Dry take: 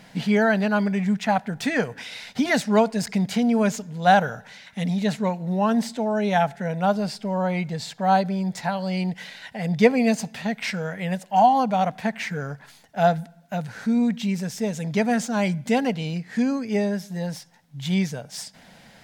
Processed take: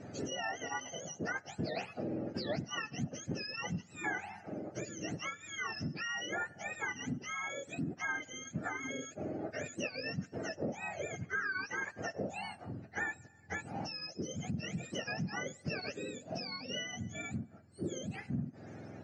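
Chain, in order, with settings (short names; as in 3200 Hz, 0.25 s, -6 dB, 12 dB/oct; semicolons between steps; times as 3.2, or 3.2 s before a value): spectrum mirrored in octaves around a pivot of 1100 Hz; compressor 6:1, threshold -35 dBFS, peak gain reduction 18 dB; air absorption 190 m; gain +1 dB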